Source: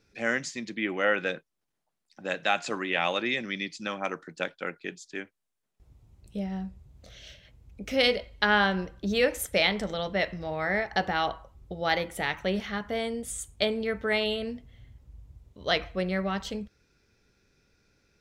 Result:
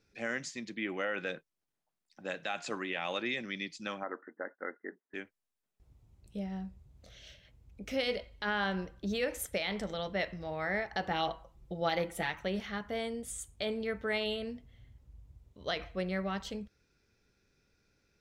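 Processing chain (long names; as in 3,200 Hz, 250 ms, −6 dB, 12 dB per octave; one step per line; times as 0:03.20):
brickwall limiter −17.5 dBFS, peak gain reduction 9 dB
0:04.03–0:05.14: linear-phase brick-wall band-pass 200–2,100 Hz
0:11.10–0:12.30: comb filter 5.9 ms, depth 69%
level −5.5 dB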